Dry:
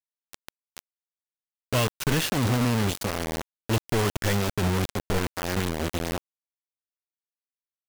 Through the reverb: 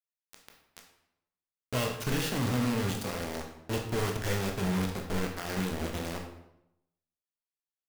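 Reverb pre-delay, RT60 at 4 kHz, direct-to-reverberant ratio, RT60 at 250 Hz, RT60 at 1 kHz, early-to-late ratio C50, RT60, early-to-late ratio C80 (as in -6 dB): 15 ms, 0.60 s, 1.0 dB, 0.90 s, 0.80 s, 5.5 dB, 0.85 s, 8.5 dB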